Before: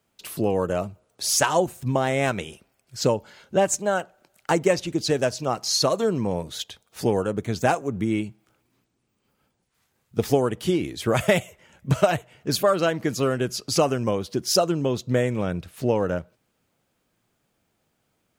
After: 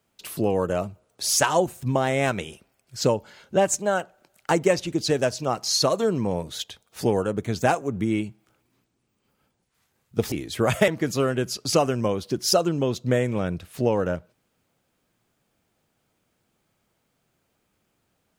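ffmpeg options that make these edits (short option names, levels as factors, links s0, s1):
-filter_complex "[0:a]asplit=3[s0][s1][s2];[s0]atrim=end=10.322[s3];[s1]atrim=start=10.788:end=11.352[s4];[s2]atrim=start=12.908[s5];[s3][s4]acrossfade=d=0.004:c1=hsin:c2=hsin[s6];[s6][s5]acrossfade=d=0.004:c1=hsin:c2=hsin"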